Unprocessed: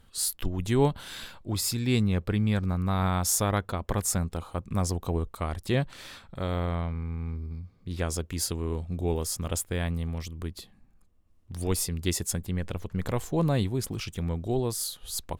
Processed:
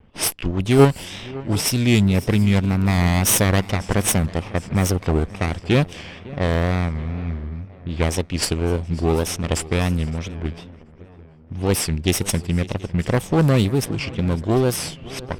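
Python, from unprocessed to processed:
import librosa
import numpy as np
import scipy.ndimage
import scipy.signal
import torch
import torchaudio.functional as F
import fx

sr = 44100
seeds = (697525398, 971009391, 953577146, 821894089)

p1 = fx.lower_of_two(x, sr, delay_ms=0.36)
p2 = fx.level_steps(p1, sr, step_db=10)
p3 = p1 + F.gain(torch.from_numpy(p2), -1.5).numpy()
p4 = fx.low_shelf(p3, sr, hz=73.0, db=-9.5)
p5 = p4 + fx.echo_swing(p4, sr, ms=738, ratio=3, feedback_pct=42, wet_db=-19.5, dry=0)
p6 = fx.env_lowpass(p5, sr, base_hz=1500.0, full_db=-21.5)
p7 = fx.wow_flutter(p6, sr, seeds[0], rate_hz=2.1, depth_cents=110.0)
y = F.gain(torch.from_numpy(p7), 7.0).numpy()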